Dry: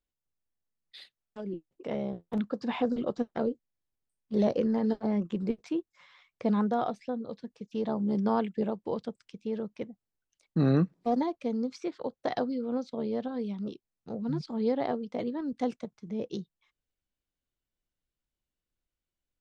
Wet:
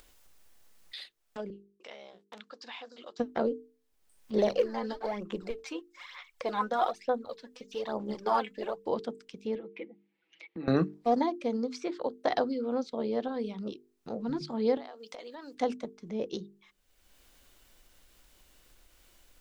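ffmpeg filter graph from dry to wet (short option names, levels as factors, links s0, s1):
-filter_complex "[0:a]asettb=1/sr,asplit=3[s0][s1][s2];[s0]atrim=end=1.504[s3];[s1]atrim=start=1.5:end=3.2,asetpts=PTS-STARTPTS,afade=t=in:d=0.004:c=qsin,afade=t=out:st=1.696:d=0.004:c=qsin,agate=range=0.0224:threshold=0.00251:ratio=3:release=100:detection=peak,lowpass=5000,aderivative[s4];[s2]atrim=start=3.196[s5];[s3][s4]acrossfade=d=0.004:c1=hsin:c2=qsin[s6];[s6][s5]acrossfade=d=0.004:c1=qsin:c2=hsin,asettb=1/sr,asplit=3[s7][s8][s9];[s7]atrim=end=4.384[s10];[s8]atrim=start=4.38:end=8.88,asetpts=PTS-STARTPTS,afade=t=in:d=0.004:c=qsin,afade=t=out:st=4.496:d=0.004:c=qsin,equalizer=f=180:w=0.6:g=-12,aphaser=in_gain=1:out_gain=1:delay=4:decay=0.62:speed=1.1:type=sinusoidal[s11];[s9]atrim=start=8.876[s12];[s10][s11]acrossfade=d=0.004:c1=hsin:c2=qsin[s13];[s13][s12]acrossfade=d=0.004:c1=qsin:c2=hsin,asettb=1/sr,asplit=3[s14][s15][s16];[s14]atrim=end=9.554[s17];[s15]atrim=start=9.55:end=10.68,asetpts=PTS-STARTPTS,afade=t=in:d=0.004:c=qsin,afade=t=out:st=1.126:d=0.004:c=qsin,aecho=1:1:6.1:0.88,atrim=end_sample=49833,acompressor=threshold=0.00562:ratio=2:attack=3.2:release=140:knee=1:detection=peak,highpass=220,equalizer=f=340:t=q:w=4:g=6,equalizer=f=650:t=q:w=4:g=-9,equalizer=f=1100:t=q:w=4:g=-7,equalizer=f=1500:t=q:w=4:g=-7,equalizer=f=2200:t=q:w=4:g=9,lowpass=f=3200:w=0.5412,lowpass=f=3200:w=1.3066[s18];[s16]atrim=start=10.676[s19];[s17][s18]acrossfade=d=0.004:c1=hsin:c2=qsin[s20];[s20][s19]acrossfade=d=0.004:c1=qsin:c2=hsin,asettb=1/sr,asplit=3[s21][s22][s23];[s21]atrim=end=14.774[s24];[s22]atrim=start=14.77:end=15.55,asetpts=PTS-STARTPTS,afade=t=in:d=0.004:c=qsin,afade=t=out:st=0.776:d=0.004:c=qsin,highpass=550,highshelf=f=3100:g=11.5,acompressor=threshold=0.00631:ratio=12:attack=3.2:release=140:knee=1:detection=peak[s25];[s23]atrim=start=15.546[s26];[s24][s25]acrossfade=d=0.004:c1=hsin:c2=qsin[s27];[s27][s26]acrossfade=d=0.004:c1=qsin:c2=hsin,equalizer=f=130:w=0.72:g=-9,bandreject=f=50:t=h:w=6,bandreject=f=100:t=h:w=6,bandreject=f=150:t=h:w=6,bandreject=f=200:t=h:w=6,bandreject=f=250:t=h:w=6,bandreject=f=300:t=h:w=6,bandreject=f=350:t=h:w=6,bandreject=f=400:t=h:w=6,bandreject=f=450:t=h:w=6,acompressor=mode=upward:threshold=0.00708:ratio=2.5,volume=1.58"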